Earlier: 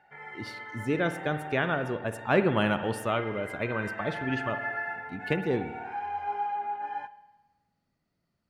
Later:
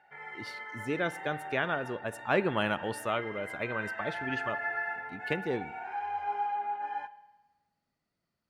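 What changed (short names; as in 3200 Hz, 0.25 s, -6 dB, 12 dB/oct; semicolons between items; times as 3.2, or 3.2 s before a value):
speech: send -9.5 dB; master: add low shelf 330 Hz -7 dB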